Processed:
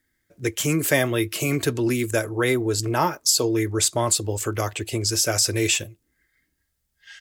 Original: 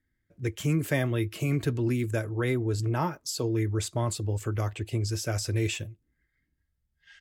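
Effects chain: tone controls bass -10 dB, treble +7 dB; trim +9 dB

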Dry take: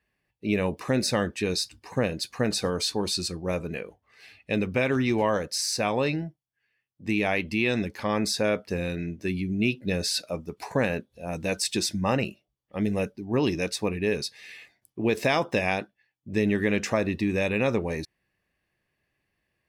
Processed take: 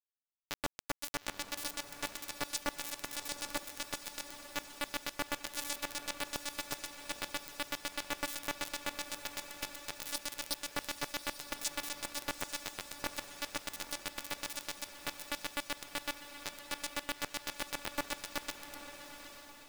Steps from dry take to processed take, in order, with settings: backward echo that repeats 182 ms, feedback 66%, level -4.5 dB; treble shelf 6.3 kHz +7.5 dB; reverse; compression 16:1, threshold -31 dBFS, peak gain reduction 14.5 dB; reverse; robot voice 289 Hz; square tremolo 7.9 Hz, depth 65%, duty 25%; bit crusher 5-bit; echo that smears into a reverb 868 ms, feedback 46%, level -9 dB; trim +3 dB

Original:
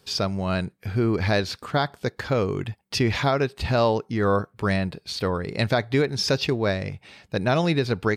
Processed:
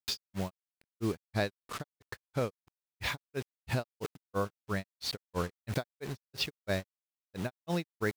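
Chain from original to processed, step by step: bit crusher 6-bit; granulator 177 ms, grains 3 per s, pitch spread up and down by 0 st; tremolo 0.74 Hz, depth 57%; compression 3:1, threshold -32 dBFS, peak gain reduction 10.5 dB; trim +2 dB

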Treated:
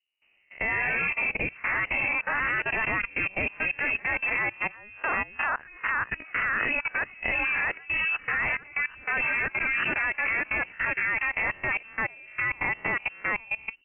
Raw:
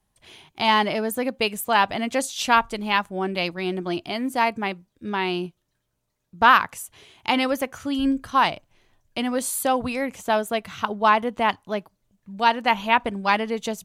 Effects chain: reverse spectral sustain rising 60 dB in 0.43 s; level-controlled noise filter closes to 730 Hz, open at -16 dBFS; ever faster or slower copies 167 ms, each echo +2 st, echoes 3; waveshaping leveller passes 1; level held to a coarse grid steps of 20 dB; frequency inversion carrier 2.9 kHz; trim -6.5 dB

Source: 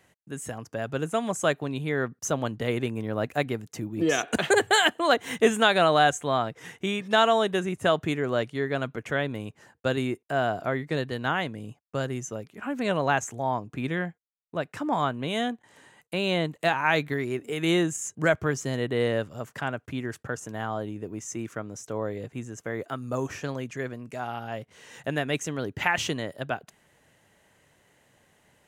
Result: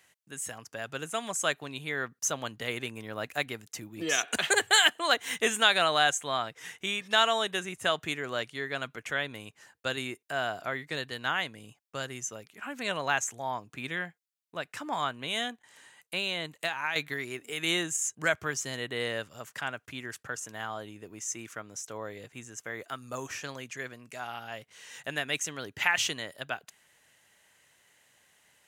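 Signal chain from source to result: tilt shelf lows -8 dB; 16.18–16.96 s: compression 6:1, threshold -23 dBFS, peak gain reduction 8.5 dB; trim -4.5 dB

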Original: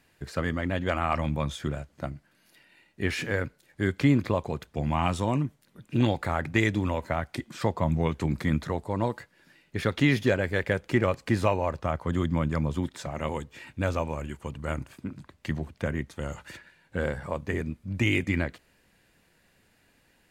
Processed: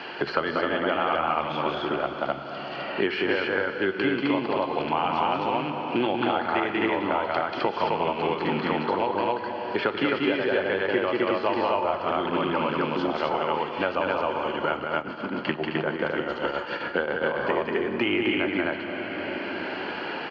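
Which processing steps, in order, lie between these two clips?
rattle on loud lows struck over -25 dBFS, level -28 dBFS; cabinet simulation 360–5000 Hz, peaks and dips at 380 Hz +5 dB, 860 Hz +6 dB, 1.4 kHz +6 dB, 1.9 kHz -5 dB, 3.1 kHz +9 dB, 4.4 kHz +7 dB; band-stop 3.7 kHz, Q 5.3; loudspeakers at several distances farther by 64 m -2 dB, 89 m 0 dB; plate-style reverb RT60 2.3 s, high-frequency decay 0.9×, DRR 8 dB; 14.80–17.39 s: tremolo triangle 7.4 Hz, depth 70%; distance through air 220 m; three bands compressed up and down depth 100%

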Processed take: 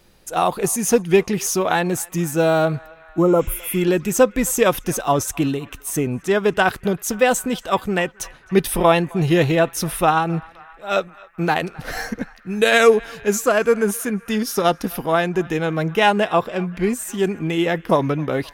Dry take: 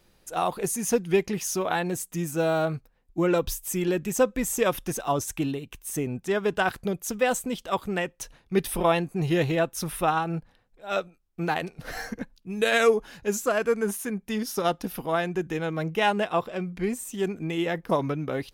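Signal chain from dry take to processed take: band-passed feedback delay 262 ms, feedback 83%, band-pass 1.6 kHz, level -21.5 dB; spectral replace 3.24–3.74 s, 1.4–8.9 kHz both; trim +7.5 dB

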